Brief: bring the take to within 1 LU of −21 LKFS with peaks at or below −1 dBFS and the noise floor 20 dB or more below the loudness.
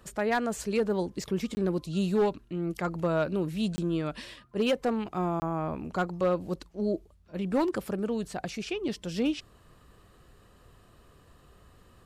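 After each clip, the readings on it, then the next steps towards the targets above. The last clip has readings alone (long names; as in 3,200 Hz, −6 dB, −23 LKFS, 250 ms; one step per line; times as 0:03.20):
share of clipped samples 0.5%; peaks flattened at −19.5 dBFS; number of dropouts 3; longest dropout 20 ms; integrated loudness −30.5 LKFS; sample peak −19.5 dBFS; target loudness −21.0 LKFS
→ clipped peaks rebuilt −19.5 dBFS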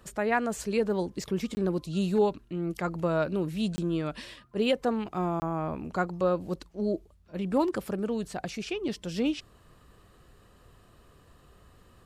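share of clipped samples 0.0%; number of dropouts 3; longest dropout 20 ms
→ repair the gap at 0:01.55/0:03.76/0:05.40, 20 ms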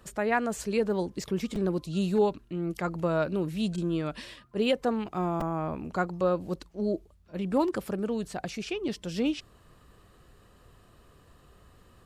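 number of dropouts 0; integrated loudness −30.0 LKFS; sample peak −12.5 dBFS; target loudness −21.0 LKFS
→ level +9 dB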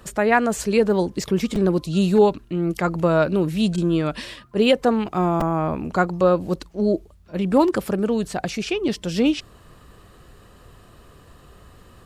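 integrated loudness −21.0 LKFS; sample peak −3.5 dBFS; background noise floor −50 dBFS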